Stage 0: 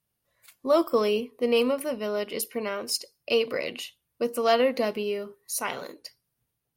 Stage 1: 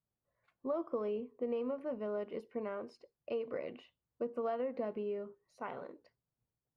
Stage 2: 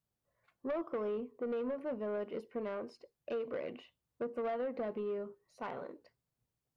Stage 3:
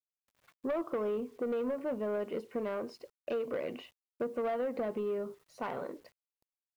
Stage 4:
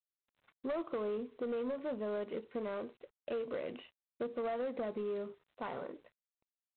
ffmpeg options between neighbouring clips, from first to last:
-af "acompressor=threshold=-25dB:ratio=6,lowpass=1.2k,volume=-7.5dB"
-af "asoftclip=type=tanh:threshold=-33.5dB,volume=2.5dB"
-filter_complex "[0:a]asplit=2[a][b];[b]acompressor=threshold=-43dB:ratio=16,volume=2dB[c];[a][c]amix=inputs=2:normalize=0,acrusher=bits=10:mix=0:aa=0.000001"
-af "volume=-3.5dB" -ar 8000 -c:a adpcm_g726 -b:a 24k

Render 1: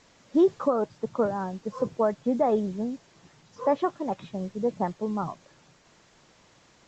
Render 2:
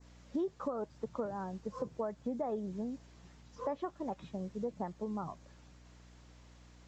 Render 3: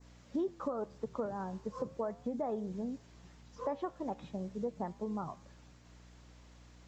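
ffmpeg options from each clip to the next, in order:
-af "aeval=exprs='val(0)+0.00282*(sin(2*PI*60*n/s)+sin(2*PI*2*60*n/s)/2+sin(2*PI*3*60*n/s)/3+sin(2*PI*4*60*n/s)/4+sin(2*PI*5*60*n/s)/5)':c=same,acompressor=threshold=-29dB:ratio=3,adynamicequalizer=threshold=0.002:dfrequency=3000:dqfactor=0.85:tfrequency=3000:tqfactor=0.85:attack=5:release=100:ratio=0.375:range=2:mode=cutabove:tftype=bell,volume=-6dB"
-af "flanger=delay=6.9:depth=8.7:regen=-89:speed=0.36:shape=triangular,volume=5dB"

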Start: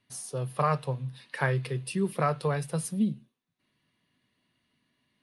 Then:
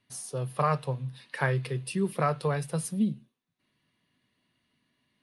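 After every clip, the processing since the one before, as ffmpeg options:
-af anull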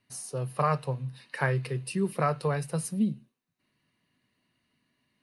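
-af "bandreject=f=3.4k:w=7.6"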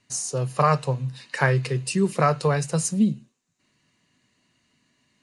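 -af "lowpass=f=7.1k:t=q:w=5.4,volume=6.5dB"

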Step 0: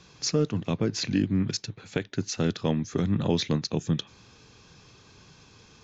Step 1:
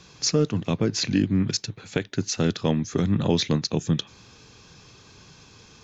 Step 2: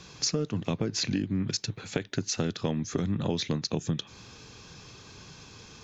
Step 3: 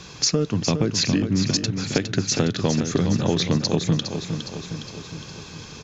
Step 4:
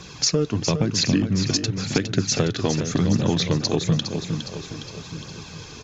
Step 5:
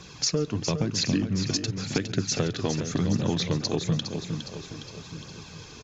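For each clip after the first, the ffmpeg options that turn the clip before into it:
-af "highshelf=f=5.7k:g=4,volume=3dB"
-af "acompressor=threshold=-27dB:ratio=6,volume=1.5dB"
-af "aecho=1:1:411|822|1233|1644|2055|2466|2877:0.398|0.227|0.129|0.0737|0.042|0.024|0.0137,volume=7.5dB"
-af "flanger=delay=0.1:depth=2.9:regen=-45:speed=0.95:shape=triangular,volume=4dB"
-af "aecho=1:1:138:0.0794,volume=-5dB"

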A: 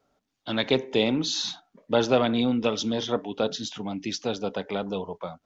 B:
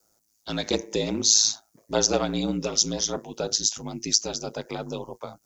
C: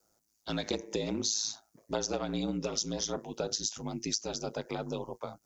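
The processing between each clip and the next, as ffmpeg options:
-filter_complex "[0:a]aeval=exprs='val(0)*sin(2*PI*54*n/s)':c=same,acrossover=split=670[a][b];[b]aexciter=amount=12.4:drive=4.9:freq=5k[c];[a][c]amix=inputs=2:normalize=0"
-af "highshelf=f=4.2k:g=-5,acompressor=threshold=-26dB:ratio=6,volume=-2.5dB"

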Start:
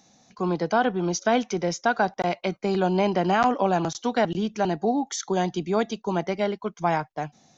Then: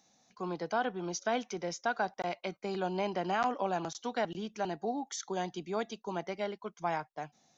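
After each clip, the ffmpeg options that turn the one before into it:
-af "lowshelf=f=290:g=-7.5,volume=-8.5dB"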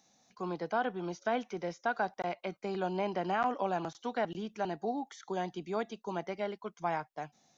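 -filter_complex "[0:a]acrossover=split=2800[a][b];[b]acompressor=threshold=-54dB:ratio=4:attack=1:release=60[c];[a][c]amix=inputs=2:normalize=0"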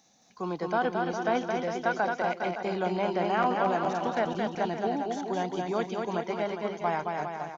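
-af "aecho=1:1:220|407|566|701.1|815.9:0.631|0.398|0.251|0.158|0.1,volume=4dB"

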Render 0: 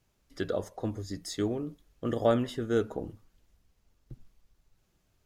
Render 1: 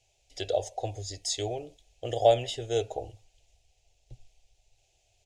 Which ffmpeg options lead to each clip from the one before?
-af "firequalizer=gain_entry='entry(120,0);entry(180,-24);entry(390,-2);entry(750,11);entry(1100,-20);entry(2500,10);entry(4600,7);entry(7000,11);entry(13000,-10)':delay=0.05:min_phase=1"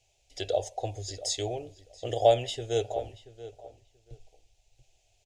-filter_complex "[0:a]asplit=2[a][b];[b]adelay=682,lowpass=f=2.4k:p=1,volume=-15dB,asplit=2[c][d];[d]adelay=682,lowpass=f=2.4k:p=1,volume=0.18[e];[a][c][e]amix=inputs=3:normalize=0"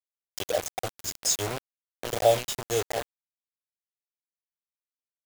-af "aexciter=amount=3:drive=4.7:freq=5.7k,acrusher=bits=4:mix=0:aa=0.000001"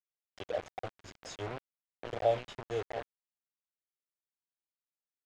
-af "lowpass=2.5k,volume=-7.5dB"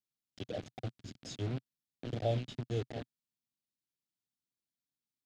-af "equalizer=f=125:t=o:w=1:g=11,equalizer=f=250:t=o:w=1:g=11,equalizer=f=500:t=o:w=1:g=-4,equalizer=f=1k:t=o:w=1:g=-9,equalizer=f=2k:t=o:w=1:g=-4,equalizer=f=4k:t=o:w=1:g=5,volume=-2dB"

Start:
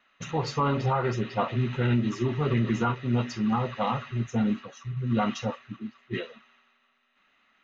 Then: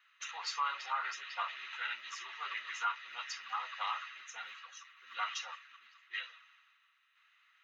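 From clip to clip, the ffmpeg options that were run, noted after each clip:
-af "highpass=f=1.2k:w=0.5412,highpass=f=1.2k:w=1.3066,volume=-1.5dB"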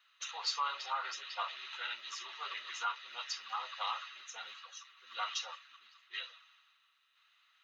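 -af "equalizer=f=500:t=o:w=1:g=6,equalizer=f=2k:t=o:w=1:g=-7,equalizer=f=4k:t=o:w=1:g=7"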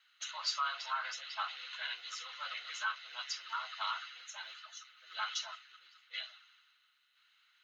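-af "afreqshift=130"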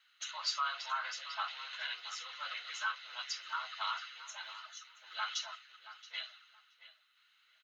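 -filter_complex "[0:a]asplit=2[a][b];[b]adelay=675,lowpass=f=3.4k:p=1,volume=-14dB,asplit=2[c][d];[d]adelay=675,lowpass=f=3.4k:p=1,volume=0.2[e];[a][c][e]amix=inputs=3:normalize=0"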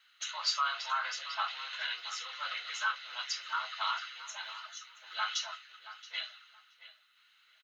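-filter_complex "[0:a]asplit=2[a][b];[b]adelay=25,volume=-12dB[c];[a][c]amix=inputs=2:normalize=0,volume=3.5dB"

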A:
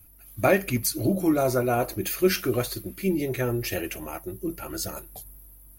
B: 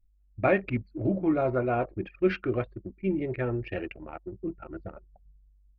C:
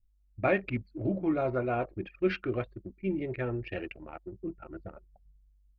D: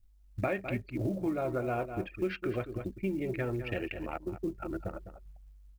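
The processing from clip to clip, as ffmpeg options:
-af "lowpass=f=2.9k:w=0.5412,lowpass=f=2.9k:w=1.3066,anlmdn=10,volume=-3dB"
-af "adynamicequalizer=threshold=0.00316:dfrequency=4100:dqfactor=0.81:tfrequency=4100:tqfactor=0.81:attack=5:release=100:ratio=0.375:range=2.5:mode=boostabove:tftype=bell,volume=-3.5dB"
-filter_complex "[0:a]asplit=2[a][b];[b]adelay=204.1,volume=-13dB,highshelf=f=4k:g=-4.59[c];[a][c]amix=inputs=2:normalize=0,acrusher=bits=8:mode=log:mix=0:aa=0.000001,acompressor=threshold=-38dB:ratio=4,volume=7dB"

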